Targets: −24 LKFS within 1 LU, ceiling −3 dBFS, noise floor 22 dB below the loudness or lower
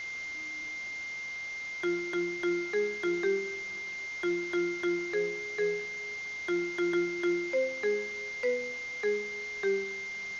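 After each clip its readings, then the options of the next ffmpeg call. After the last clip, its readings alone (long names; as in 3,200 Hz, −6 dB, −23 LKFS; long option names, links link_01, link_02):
interfering tone 2,100 Hz; level of the tone −36 dBFS; background noise floor −39 dBFS; target noise floor −54 dBFS; integrated loudness −32.0 LKFS; sample peak −19.0 dBFS; target loudness −24.0 LKFS
→ -af "bandreject=frequency=2100:width=30"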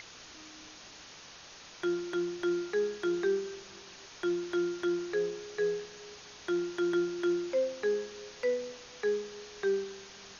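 interfering tone none found; background noise floor −51 dBFS; target noise floor −55 dBFS
→ -af "afftdn=noise_reduction=6:noise_floor=-51"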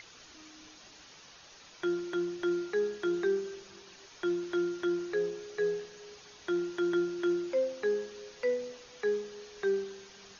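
background noise floor −55 dBFS; integrated loudness −33.0 LKFS; sample peak −20.5 dBFS; target loudness −24.0 LKFS
→ -af "volume=9dB"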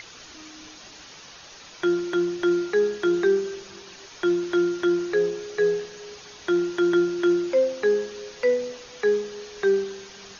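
integrated loudness −24.0 LKFS; sample peak −11.5 dBFS; background noise floor −46 dBFS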